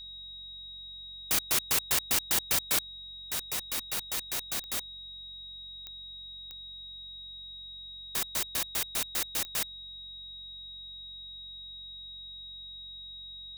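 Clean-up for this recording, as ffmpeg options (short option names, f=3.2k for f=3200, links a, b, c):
-af "adeclick=t=4,bandreject=f=45.7:t=h:w=4,bandreject=f=91.4:t=h:w=4,bandreject=f=137.1:t=h:w=4,bandreject=f=182.8:t=h:w=4,bandreject=f=228.5:t=h:w=4,bandreject=f=3.8k:w=30"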